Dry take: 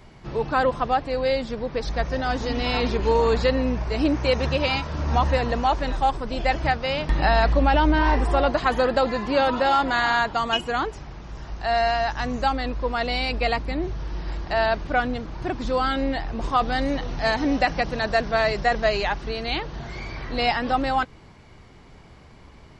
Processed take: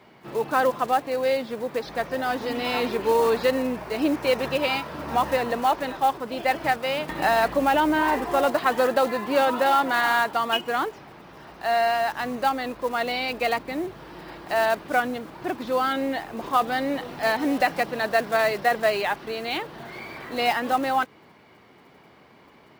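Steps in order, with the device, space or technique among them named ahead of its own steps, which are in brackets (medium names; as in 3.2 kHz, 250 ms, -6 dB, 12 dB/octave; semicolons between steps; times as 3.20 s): early digital voice recorder (band-pass 230–3800 Hz; block-companded coder 5-bit)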